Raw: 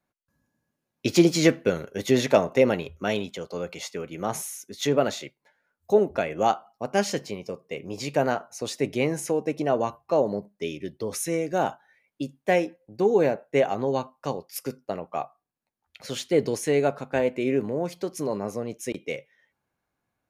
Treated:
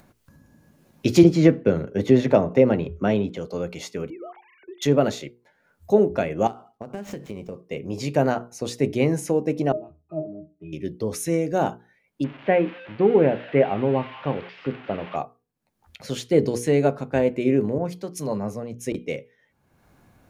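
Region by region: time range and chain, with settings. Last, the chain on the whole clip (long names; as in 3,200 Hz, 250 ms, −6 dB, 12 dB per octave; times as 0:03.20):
0:01.23–0:03.37: low-pass filter 1,800 Hz 6 dB per octave + multiband upward and downward compressor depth 40%
0:04.10–0:04.82: three sine waves on the formant tracks + low-pass filter 2,500 Hz + downward compressor 5 to 1, threshold −39 dBFS
0:06.47–0:07.65: running median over 9 samples + downward compressor 20 to 1, threshold −32 dBFS
0:09.72–0:10.73: low-pass filter 4,000 Hz + resonances in every octave D#, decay 0.22 s
0:12.24–0:15.16: spike at every zero crossing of −17.5 dBFS + Butterworth low-pass 2,900 Hz
0:17.78–0:18.81: parametric band 350 Hz −7.5 dB 0.68 octaves + multiband upward and downward expander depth 70%
whole clip: low-shelf EQ 410 Hz +10 dB; mains-hum notches 60/120/180/240/300/360/420/480 Hz; upward compression, threshold −38 dBFS; level −1 dB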